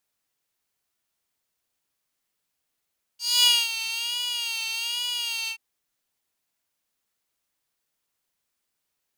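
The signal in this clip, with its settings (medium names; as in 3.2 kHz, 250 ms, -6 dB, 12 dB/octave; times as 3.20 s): synth patch with vibrato A#5, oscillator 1 square, sub -3.5 dB, filter highpass, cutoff 2.5 kHz, Q 3.4, filter envelope 1 oct, attack 238 ms, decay 0.25 s, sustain -12.5 dB, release 0.09 s, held 2.29 s, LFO 1.2 Hz, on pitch 67 cents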